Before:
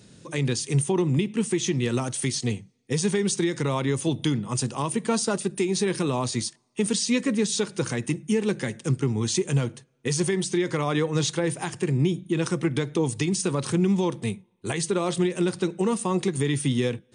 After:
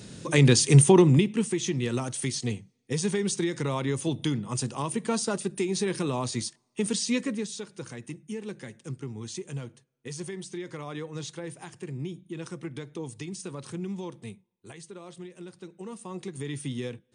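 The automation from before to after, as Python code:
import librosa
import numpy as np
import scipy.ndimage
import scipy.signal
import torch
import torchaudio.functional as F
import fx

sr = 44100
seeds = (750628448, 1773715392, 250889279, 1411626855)

y = fx.gain(x, sr, db=fx.line((0.95, 7.0), (1.52, -3.5), (7.18, -3.5), (7.59, -12.5), (14.32, -12.5), (14.87, -19.0), (15.56, -19.0), (16.54, -9.5)))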